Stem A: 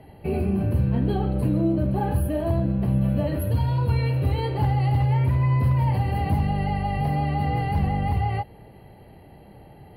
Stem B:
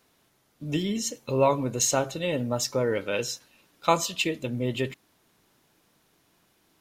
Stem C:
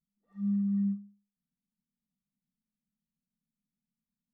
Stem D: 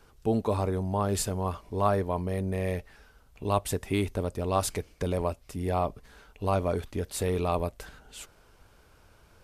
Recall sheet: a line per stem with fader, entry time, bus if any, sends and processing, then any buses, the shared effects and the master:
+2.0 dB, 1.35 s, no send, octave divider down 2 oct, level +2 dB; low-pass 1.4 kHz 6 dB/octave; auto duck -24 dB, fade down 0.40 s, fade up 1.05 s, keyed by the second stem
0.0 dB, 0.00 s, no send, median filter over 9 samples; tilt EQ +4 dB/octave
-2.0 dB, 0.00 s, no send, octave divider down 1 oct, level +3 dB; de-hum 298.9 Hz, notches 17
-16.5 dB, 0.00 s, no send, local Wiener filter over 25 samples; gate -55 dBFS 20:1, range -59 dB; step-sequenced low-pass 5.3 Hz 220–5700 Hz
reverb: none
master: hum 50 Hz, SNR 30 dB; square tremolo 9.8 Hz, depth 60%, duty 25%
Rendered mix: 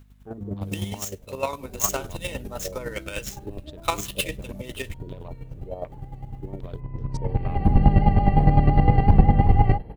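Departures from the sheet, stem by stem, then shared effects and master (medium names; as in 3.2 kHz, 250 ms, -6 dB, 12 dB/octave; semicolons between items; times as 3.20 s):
stem A +2.0 dB -> +9.0 dB; stem D -16.5 dB -> -8.0 dB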